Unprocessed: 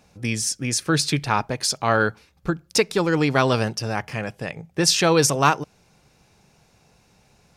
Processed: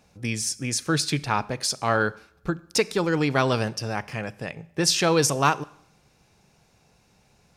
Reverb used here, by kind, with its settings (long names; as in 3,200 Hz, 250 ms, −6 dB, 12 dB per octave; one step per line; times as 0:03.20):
four-comb reverb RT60 0.7 s, combs from 30 ms, DRR 19.5 dB
level −3 dB